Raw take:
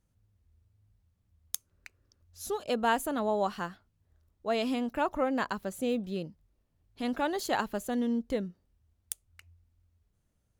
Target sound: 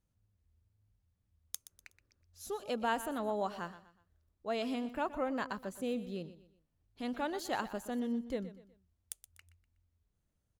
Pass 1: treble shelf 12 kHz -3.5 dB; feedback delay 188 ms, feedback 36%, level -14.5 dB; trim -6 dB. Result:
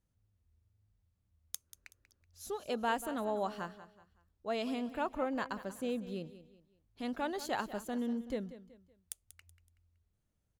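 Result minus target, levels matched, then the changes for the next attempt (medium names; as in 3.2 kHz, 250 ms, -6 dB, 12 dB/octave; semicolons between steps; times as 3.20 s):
echo 65 ms late
change: feedback delay 123 ms, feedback 36%, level -14.5 dB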